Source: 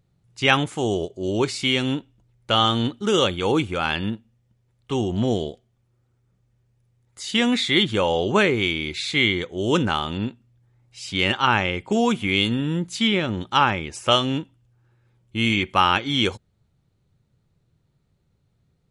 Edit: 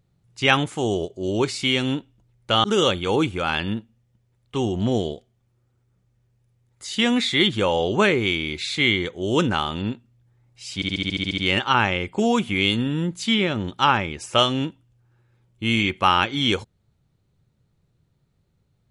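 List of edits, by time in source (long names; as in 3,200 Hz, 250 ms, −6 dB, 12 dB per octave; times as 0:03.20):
0:02.64–0:03.00: remove
0:11.11: stutter 0.07 s, 10 plays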